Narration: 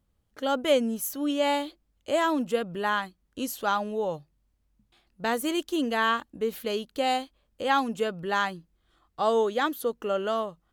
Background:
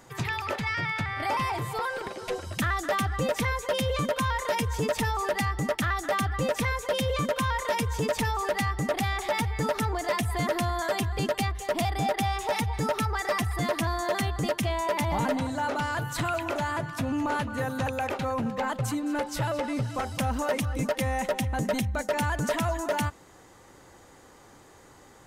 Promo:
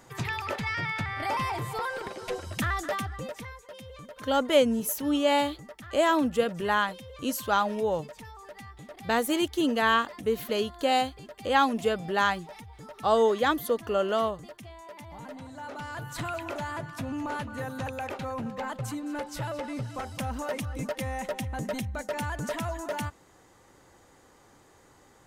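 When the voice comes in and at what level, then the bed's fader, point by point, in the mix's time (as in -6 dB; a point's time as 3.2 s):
3.85 s, +1.5 dB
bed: 2.81 s -1.5 dB
3.67 s -18 dB
15.08 s -18 dB
16.19 s -5 dB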